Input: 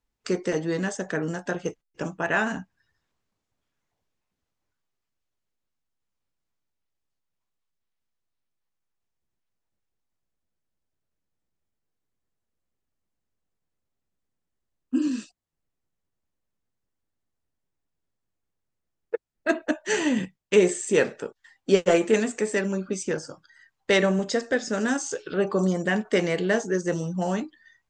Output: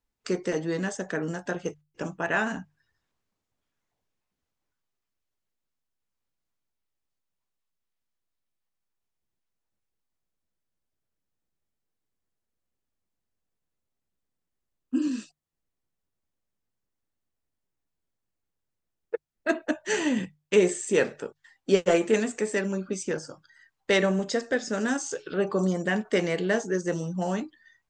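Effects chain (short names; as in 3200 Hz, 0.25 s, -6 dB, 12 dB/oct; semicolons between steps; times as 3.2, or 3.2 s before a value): notches 50/100/150 Hz; gain -2 dB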